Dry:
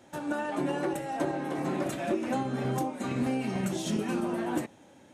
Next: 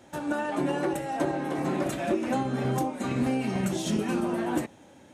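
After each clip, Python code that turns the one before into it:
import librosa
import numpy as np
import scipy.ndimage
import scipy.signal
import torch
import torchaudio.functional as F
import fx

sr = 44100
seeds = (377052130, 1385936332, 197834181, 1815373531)

y = fx.peak_eq(x, sr, hz=61.0, db=6.5, octaves=0.77)
y = y * librosa.db_to_amplitude(2.5)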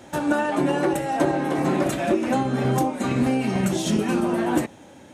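y = fx.rider(x, sr, range_db=10, speed_s=0.5)
y = y * librosa.db_to_amplitude(6.0)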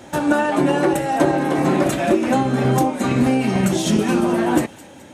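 y = fx.echo_wet_highpass(x, sr, ms=212, feedback_pct=47, hz=2500.0, wet_db=-14.5)
y = y * librosa.db_to_amplitude(4.5)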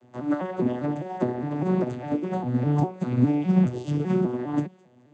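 y = fx.vocoder_arp(x, sr, chord='minor triad', root=47, every_ms=202)
y = fx.upward_expand(y, sr, threshold_db=-28.0, expansion=1.5)
y = y * librosa.db_to_amplitude(-3.5)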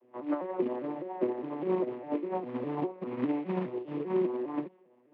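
y = fx.rotary(x, sr, hz=5.0)
y = fx.quant_float(y, sr, bits=2)
y = fx.cabinet(y, sr, low_hz=320.0, low_slope=12, high_hz=2500.0, hz=(350.0, 510.0, 1000.0, 1500.0), db=(7, 5, 9, -6))
y = y * librosa.db_to_amplitude(-5.0)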